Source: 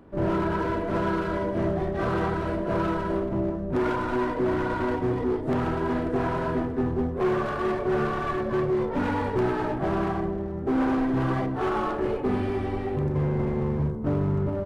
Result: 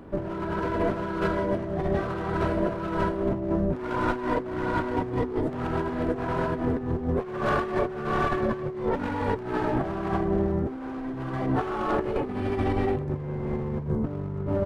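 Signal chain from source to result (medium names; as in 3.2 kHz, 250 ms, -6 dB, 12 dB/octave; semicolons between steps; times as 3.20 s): compressor with a negative ratio -29 dBFS, ratio -0.5; trim +2.5 dB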